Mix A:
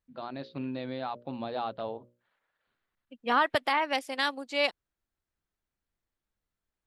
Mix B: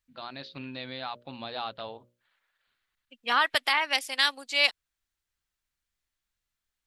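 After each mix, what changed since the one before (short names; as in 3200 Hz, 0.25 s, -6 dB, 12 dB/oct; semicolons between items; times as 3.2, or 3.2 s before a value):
first voice: add low shelf 140 Hz +11.5 dB; master: add tilt shelf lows -10 dB, about 1100 Hz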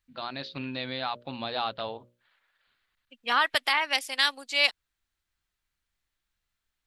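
first voice +4.5 dB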